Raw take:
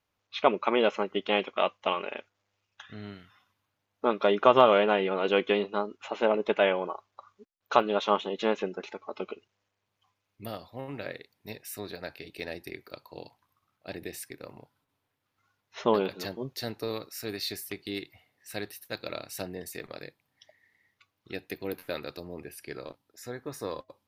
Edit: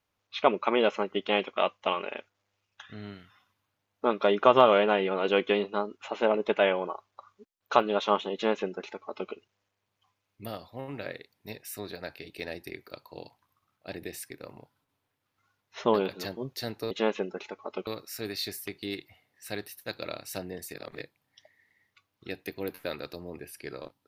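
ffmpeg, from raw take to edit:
-filter_complex "[0:a]asplit=5[s0][s1][s2][s3][s4];[s0]atrim=end=16.912[s5];[s1]atrim=start=8.338:end=9.302[s6];[s2]atrim=start=16.908:end=19.782[s7];[s3]atrim=start=19.778:end=20.052,asetpts=PTS-STARTPTS,areverse[s8];[s4]atrim=start=20.048[s9];[s5][s6]acrossfade=d=0.004:c1=hsin:c2=hsin[s10];[s10][s7]acrossfade=d=0.004:c1=hsin:c2=hsin[s11];[s11][s8]acrossfade=d=0.004:c1=hsin:c2=hsin[s12];[s12][s9]acrossfade=d=0.004:c1=hsin:c2=hsin"

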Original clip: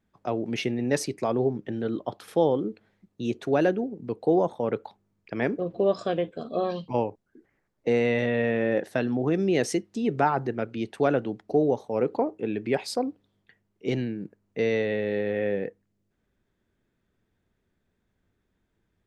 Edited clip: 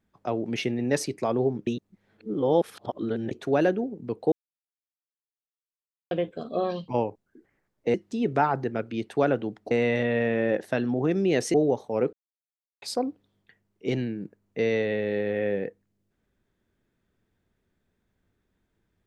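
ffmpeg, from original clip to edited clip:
-filter_complex "[0:a]asplit=10[s0][s1][s2][s3][s4][s5][s6][s7][s8][s9];[s0]atrim=end=1.672[s10];[s1]atrim=start=1.668:end=3.312,asetpts=PTS-STARTPTS,areverse[s11];[s2]atrim=start=3.308:end=4.32,asetpts=PTS-STARTPTS,afade=t=out:st=1.008:d=0.004:c=hsin[s12];[s3]atrim=start=4.32:end=6.11,asetpts=PTS-STARTPTS,volume=0[s13];[s4]atrim=start=6.11:end=7.942,asetpts=PTS-STARTPTS,afade=t=in:d=0.004:c=hsin[s14];[s5]atrim=start=9.768:end=11.542[s15];[s6]atrim=start=7.938:end=9.772[s16];[s7]atrim=start=11.538:end=12.13,asetpts=PTS-STARTPTS,afade=t=out:st=0.588:d=0.004:c=hsin[s17];[s8]atrim=start=12.13:end=12.82,asetpts=PTS-STARTPTS,volume=0[s18];[s9]atrim=start=12.82,asetpts=PTS-STARTPTS,afade=t=in:d=0.004:c=hsin[s19];[s10][s11]acrossfade=d=0.004:c1=hsin:c2=hsin[s20];[s12][s13][s14]concat=n=3:v=0:a=1[s21];[s20][s21]acrossfade=d=0.004:c1=hsin:c2=hsin[s22];[s22][s15]acrossfade=d=0.004:c1=hsin:c2=hsin[s23];[s23][s16]acrossfade=d=0.004:c1=hsin:c2=hsin[s24];[s17][s18][s19]concat=n=3:v=0:a=1[s25];[s24][s25]acrossfade=d=0.004:c1=hsin:c2=hsin"

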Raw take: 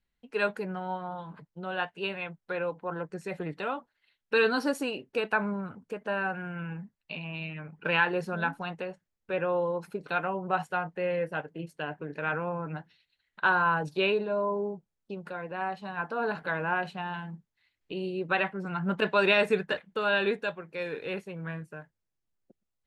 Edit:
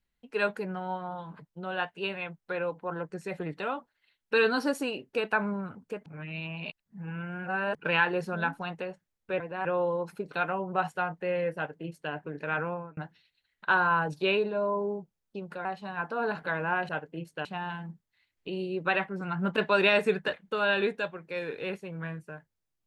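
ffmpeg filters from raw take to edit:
-filter_complex "[0:a]asplit=9[s0][s1][s2][s3][s4][s5][s6][s7][s8];[s0]atrim=end=6.062[s9];[s1]atrim=start=6.058:end=7.752,asetpts=PTS-STARTPTS,areverse[s10];[s2]atrim=start=7.748:end=9.402[s11];[s3]atrim=start=15.398:end=15.652[s12];[s4]atrim=start=9.398:end=12.72,asetpts=PTS-STARTPTS,afade=t=out:st=3.032:d=0.29[s13];[s5]atrim=start=12.72:end=15.402,asetpts=PTS-STARTPTS,afade=t=in:d=0.004:c=hsin[s14];[s6]atrim=start=15.648:end=16.892[s15];[s7]atrim=start=11.308:end=11.872[s16];[s8]atrim=start=16.888[s17];[s9][s10]acrossfade=d=0.004:c1=hsin:c2=hsin[s18];[s18][s11]acrossfade=d=0.004:c1=hsin:c2=hsin[s19];[s19][s12]acrossfade=d=0.004:c1=hsin:c2=hsin[s20];[s13][s14]concat=n=2:v=0:a=1[s21];[s20][s21]acrossfade=d=0.004:c1=hsin:c2=hsin[s22];[s22][s15]acrossfade=d=0.004:c1=hsin:c2=hsin[s23];[s23][s16]acrossfade=d=0.004:c1=hsin:c2=hsin[s24];[s24][s17]acrossfade=d=0.004:c1=hsin:c2=hsin"

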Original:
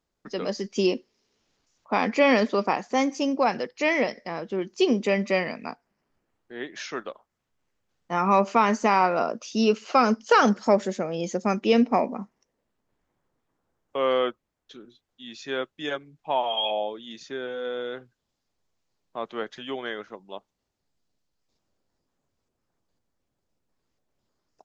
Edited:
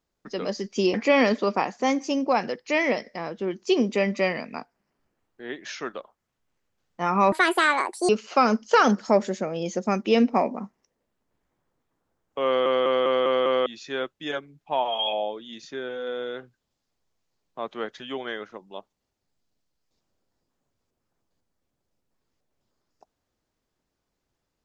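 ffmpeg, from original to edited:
-filter_complex "[0:a]asplit=10[s0][s1][s2][s3][s4][s5][s6][s7][s8][s9];[s0]atrim=end=0.942[s10];[s1]atrim=start=2.048:end=8.434[s11];[s2]atrim=start=8.43:end=9.67,asetpts=PTS-STARTPTS,asetrate=71001,aresample=44100,atrim=end_sample=33965,asetpts=PTS-STARTPTS[s12];[s3]atrim=start=9.666:end=14.242[s13];[s4]atrim=start=14.038:end=14.242[s14];[s5]atrim=start=14.038:end=14.242[s15];[s6]atrim=start=14.038:end=14.242[s16];[s7]atrim=start=14.038:end=14.242[s17];[s8]atrim=start=14.038:end=14.242[s18];[s9]atrim=start=15.238[s19];[s10][s11]acrossfade=d=0.004:c1=hsin:c2=hsin[s20];[s20][s12]acrossfade=d=0.004:c1=hsin:c2=hsin[s21];[s21][s13]acrossfade=d=0.004:c1=hsin:c2=hsin[s22];[s22][s14]acrossfade=d=0.004:c1=hsin:c2=hsin[s23];[s23][s15]acrossfade=d=0.004:c1=hsin:c2=hsin[s24];[s24][s16]acrossfade=d=0.004:c1=hsin:c2=hsin[s25];[s25][s17]acrossfade=d=0.004:c1=hsin:c2=hsin[s26];[s26][s18]acrossfade=d=0.004:c1=hsin:c2=hsin[s27];[s27][s19]acrossfade=d=0.004:c1=hsin:c2=hsin"

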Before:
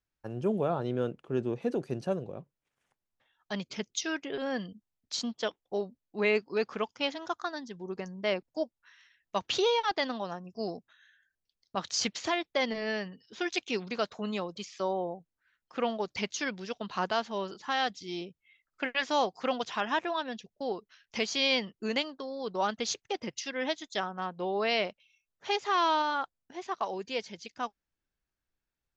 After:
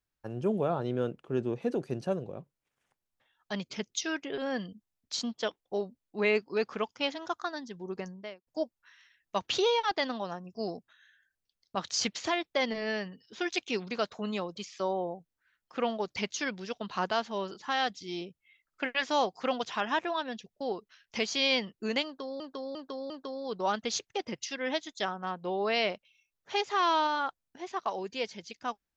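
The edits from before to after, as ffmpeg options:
-filter_complex "[0:a]asplit=5[s0][s1][s2][s3][s4];[s0]atrim=end=8.47,asetpts=PTS-STARTPTS,afade=t=out:st=8.08:d=0.39:c=qua[s5];[s1]atrim=start=8.47:end=22.402,asetpts=PTS-STARTPTS,afade=t=in:d=0.004:c=hsin[s6];[s2]atrim=start=22.048:end=22.402[s7];[s3]atrim=start=22.048:end=22.402[s8];[s4]atrim=start=22.048[s9];[s5][s6]concat=n=2:v=0:a=1[s10];[s10][s7]acrossfade=d=0.004:c1=hsin:c2=hsin[s11];[s11][s8]acrossfade=d=0.004:c1=hsin:c2=hsin[s12];[s12][s9]acrossfade=d=0.004:c1=hsin:c2=hsin"

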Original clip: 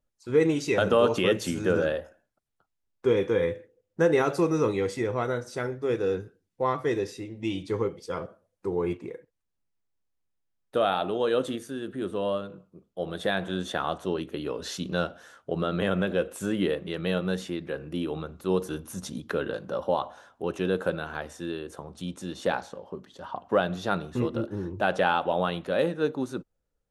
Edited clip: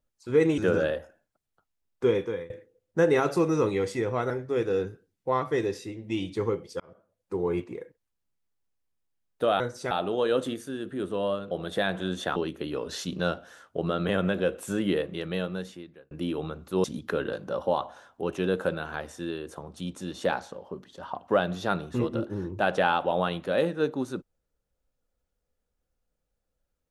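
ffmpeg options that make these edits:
-filter_complex "[0:a]asplit=11[s0][s1][s2][s3][s4][s5][s6][s7][s8][s9][s10];[s0]atrim=end=0.582[s11];[s1]atrim=start=1.598:end=3.52,asetpts=PTS-STARTPTS,afade=t=out:st=1.492:d=0.43:silence=0.0668344[s12];[s2]atrim=start=3.52:end=5.322,asetpts=PTS-STARTPTS,afade=t=in:d=0.004:c=hsin:silence=0.0668344[s13];[s3]atrim=start=5.628:end=8.13,asetpts=PTS-STARTPTS,afade=t=out:st=2.498:d=0.004:c=hsin[s14];[s4]atrim=start=8.13:end=10.932,asetpts=PTS-STARTPTS,afade=t=in:d=0.56[s15];[s5]atrim=start=5.318:end=5.632[s16];[s6]atrim=start=10.928:end=12.532[s17];[s7]atrim=start=12.988:end=13.842[s18];[s8]atrim=start=14.088:end=17.84,asetpts=PTS-STARTPTS,afade=t=out:st=2.742:d=1.01[s19];[s9]atrim=start=17.84:end=18.572,asetpts=PTS-STARTPTS,afade=t=in:d=0.004:c=hsin[s20];[s10]atrim=start=19.048[s21];[s12][s13]concat=n=2:v=0:a=1[s22];[s11][s22]acrossfade=d=0.004:c1=hsin:c2=hsin[s23];[s14][s15]concat=n=2:v=0:a=1[s24];[s23][s24]acrossfade=d=0.004:c1=hsin:c2=hsin[s25];[s25][s16]acrossfade=d=0.004:c1=hsin:c2=hsin[s26];[s26][s17]acrossfade=d=0.004:c1=hsin:c2=hsin[s27];[s27][s18]acrossfade=d=0.004:c1=hsin:c2=hsin[s28];[s19][s20]concat=n=2:v=0:a=1[s29];[s28][s29]acrossfade=d=0.004:c1=hsin:c2=hsin[s30];[s30][s21]acrossfade=d=0.004:c1=hsin:c2=hsin"

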